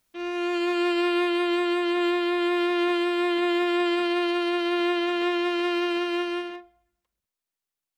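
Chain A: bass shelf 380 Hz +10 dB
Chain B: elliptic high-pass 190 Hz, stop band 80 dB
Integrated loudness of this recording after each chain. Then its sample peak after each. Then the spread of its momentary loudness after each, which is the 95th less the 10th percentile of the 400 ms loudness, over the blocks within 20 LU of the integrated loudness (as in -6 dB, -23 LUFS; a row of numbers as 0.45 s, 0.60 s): -20.5 LUFS, -25.5 LUFS; -12.0 dBFS, -16.5 dBFS; 4 LU, 4 LU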